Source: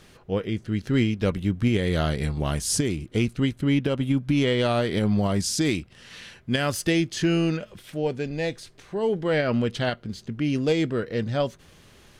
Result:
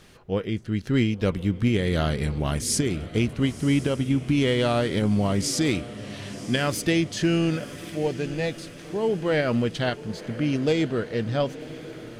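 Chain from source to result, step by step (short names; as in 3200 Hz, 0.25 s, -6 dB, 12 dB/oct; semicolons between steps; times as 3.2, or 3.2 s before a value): diffused feedback echo 1.028 s, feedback 59%, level -15 dB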